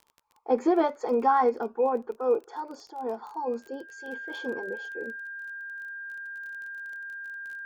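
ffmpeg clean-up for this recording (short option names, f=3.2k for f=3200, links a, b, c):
-af "adeclick=t=4,bandreject=f=1.6k:w=30"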